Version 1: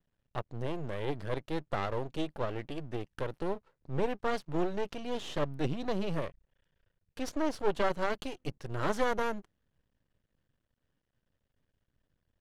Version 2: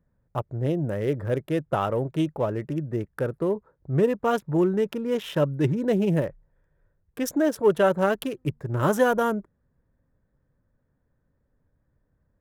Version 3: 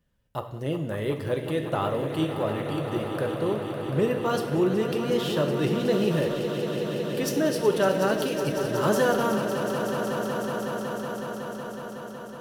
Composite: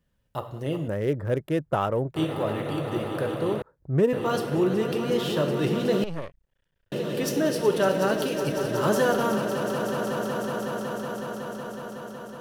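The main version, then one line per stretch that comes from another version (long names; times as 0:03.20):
3
0:00.88–0:02.16: punch in from 2
0:03.62–0:04.13: punch in from 2
0:06.04–0:06.92: punch in from 1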